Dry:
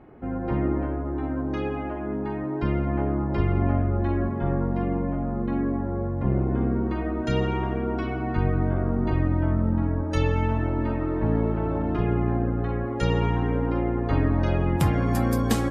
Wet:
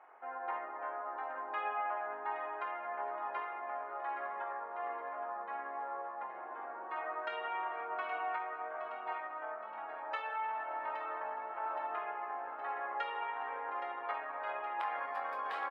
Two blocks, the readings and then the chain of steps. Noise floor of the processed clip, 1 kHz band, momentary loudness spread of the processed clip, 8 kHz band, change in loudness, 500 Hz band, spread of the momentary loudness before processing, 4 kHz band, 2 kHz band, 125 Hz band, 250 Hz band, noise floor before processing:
−45 dBFS, −3.0 dB, 4 LU, can't be measured, −14.0 dB, −15.0 dB, 5 LU, −12.5 dB, −4.5 dB, below −40 dB, −36.0 dB, −29 dBFS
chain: high-shelf EQ 2,900 Hz −8.5 dB
brickwall limiter −19.5 dBFS, peak gain reduction 9.5 dB
high-pass filter 830 Hz 24 dB per octave
high-frequency loss of the air 450 metres
double-tracking delay 24 ms −9 dB
repeating echo 819 ms, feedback 53%, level −10.5 dB
level +4.5 dB

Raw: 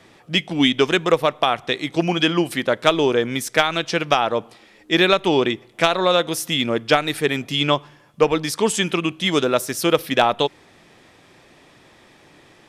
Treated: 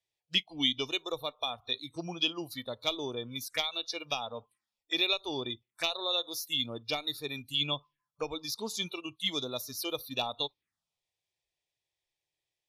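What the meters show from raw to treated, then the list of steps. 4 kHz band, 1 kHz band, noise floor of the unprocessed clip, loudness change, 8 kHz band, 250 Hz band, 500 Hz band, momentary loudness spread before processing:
−7.5 dB, −19.0 dB, −52 dBFS, −13.5 dB, −13.5 dB, −18.5 dB, −19.5 dB, 6 LU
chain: noise reduction from a noise print of the clip's start 26 dB
phaser swept by the level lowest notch 230 Hz, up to 1,600 Hz, full sweep at −21.5 dBFS
guitar amp tone stack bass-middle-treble 5-5-5
level +2 dB

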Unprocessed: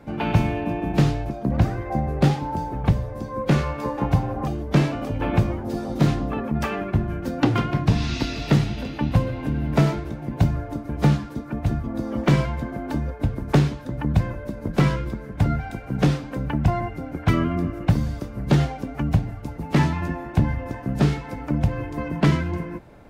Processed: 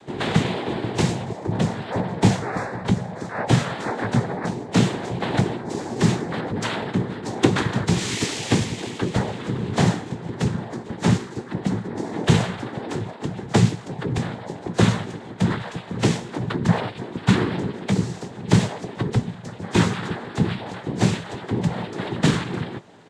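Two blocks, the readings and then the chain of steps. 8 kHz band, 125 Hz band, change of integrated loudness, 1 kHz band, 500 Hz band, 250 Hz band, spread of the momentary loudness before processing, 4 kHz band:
can't be measured, −1.5 dB, 0.0 dB, +0.5 dB, +1.5 dB, +0.5 dB, 8 LU, +6.0 dB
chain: high-shelf EQ 3,000 Hz +10 dB
cochlear-implant simulation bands 6
double-tracking delay 17 ms −12.5 dB

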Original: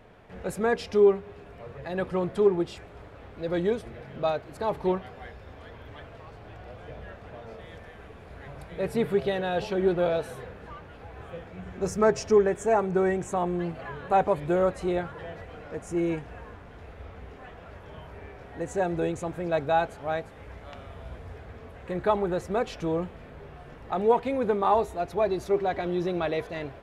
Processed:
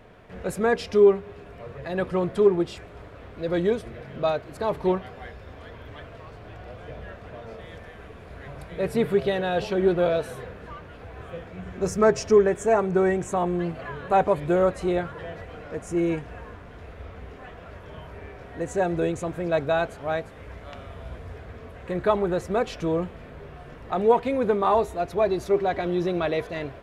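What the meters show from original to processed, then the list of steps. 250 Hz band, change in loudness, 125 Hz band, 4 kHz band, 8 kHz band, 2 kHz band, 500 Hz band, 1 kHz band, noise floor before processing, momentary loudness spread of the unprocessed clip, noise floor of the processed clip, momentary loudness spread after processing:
+3.0 dB, +3.0 dB, +3.0 dB, +3.0 dB, +3.0 dB, +3.0 dB, +3.0 dB, +1.5 dB, −47 dBFS, 22 LU, −44 dBFS, 21 LU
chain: notch filter 830 Hz, Q 12
level +3 dB

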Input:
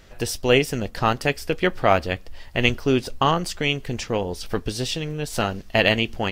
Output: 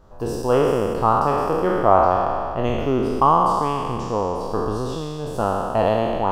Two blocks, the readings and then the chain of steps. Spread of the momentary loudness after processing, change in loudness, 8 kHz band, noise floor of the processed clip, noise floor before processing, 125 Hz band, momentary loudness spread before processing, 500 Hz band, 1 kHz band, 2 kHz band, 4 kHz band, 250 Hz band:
9 LU, +2.5 dB, can't be measured, −29 dBFS, −44 dBFS, 0.0 dB, 9 LU, +3.5 dB, +7.5 dB, −10.0 dB, −12.0 dB, +1.0 dB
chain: peak hold with a decay on every bin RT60 2.36 s
high shelf with overshoot 1,500 Hz −12 dB, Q 3
level −3 dB

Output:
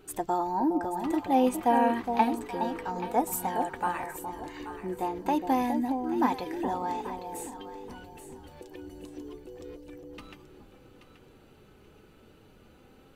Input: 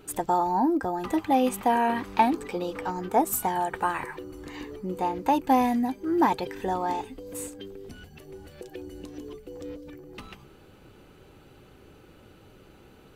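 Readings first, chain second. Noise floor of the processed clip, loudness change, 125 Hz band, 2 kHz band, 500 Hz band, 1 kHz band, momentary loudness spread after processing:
−57 dBFS, −3.0 dB, −4.0 dB, −4.0 dB, −2.0 dB, −3.0 dB, 21 LU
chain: flanger 0.21 Hz, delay 2.6 ms, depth 2.2 ms, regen +68%
delay that swaps between a low-pass and a high-pass 415 ms, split 860 Hz, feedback 51%, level −5.5 dB

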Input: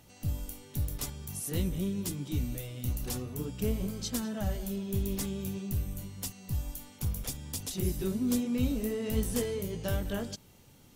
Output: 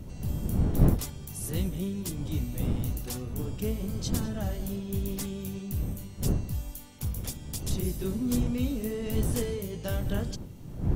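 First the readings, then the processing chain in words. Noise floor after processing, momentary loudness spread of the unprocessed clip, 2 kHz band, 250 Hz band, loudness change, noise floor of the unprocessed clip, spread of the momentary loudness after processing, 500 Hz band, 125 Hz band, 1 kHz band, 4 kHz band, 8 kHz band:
−42 dBFS, 7 LU, +0.5 dB, +2.0 dB, +2.5 dB, −57 dBFS, 8 LU, +1.0 dB, +4.5 dB, +2.5 dB, 0.0 dB, 0.0 dB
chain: wind on the microphone 140 Hz −32 dBFS

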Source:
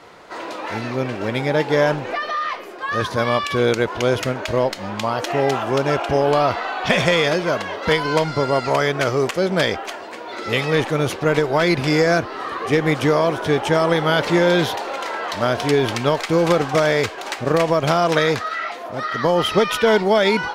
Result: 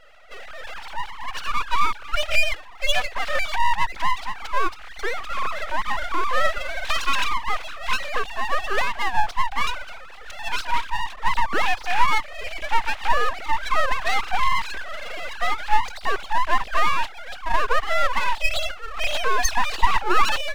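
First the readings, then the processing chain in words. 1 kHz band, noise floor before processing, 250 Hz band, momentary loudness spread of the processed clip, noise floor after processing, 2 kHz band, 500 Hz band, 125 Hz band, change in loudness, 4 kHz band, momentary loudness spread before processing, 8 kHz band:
0.0 dB, −33 dBFS, −20.0 dB, 11 LU, −38 dBFS, −2.0 dB, −15.0 dB, −16.0 dB, −5.0 dB, −3.0 dB, 9 LU, −1.0 dB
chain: three sine waves on the formant tracks
full-wave rectification

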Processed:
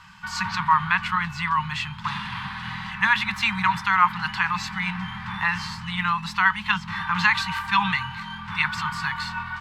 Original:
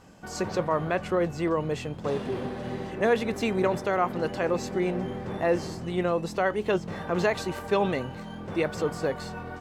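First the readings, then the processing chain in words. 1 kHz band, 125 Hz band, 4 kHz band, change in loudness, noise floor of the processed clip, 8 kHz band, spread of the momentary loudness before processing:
+8.5 dB, +1.0 dB, +11.5 dB, +4.5 dB, −38 dBFS, +1.5 dB, 8 LU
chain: Chebyshev band-stop filter 200–920 Hz, order 4
flat-topped bell 1,900 Hz +11 dB 2.9 octaves
level +1.5 dB

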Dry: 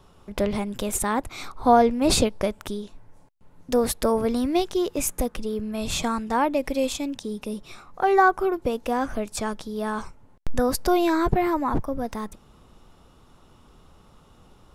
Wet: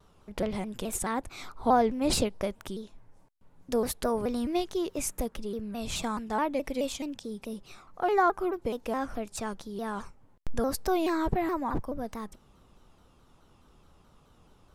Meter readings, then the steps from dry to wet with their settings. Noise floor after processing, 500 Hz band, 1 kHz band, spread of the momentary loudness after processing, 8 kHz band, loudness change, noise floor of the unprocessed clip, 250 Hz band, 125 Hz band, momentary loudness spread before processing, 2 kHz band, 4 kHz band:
−61 dBFS, −6.5 dB, −6.5 dB, 15 LU, −6.5 dB, −6.5 dB, −55 dBFS, −6.5 dB, −6.5 dB, 14 LU, −8.0 dB, −6.5 dB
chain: pitch modulation by a square or saw wave saw down 4.7 Hz, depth 160 cents
level −6.5 dB

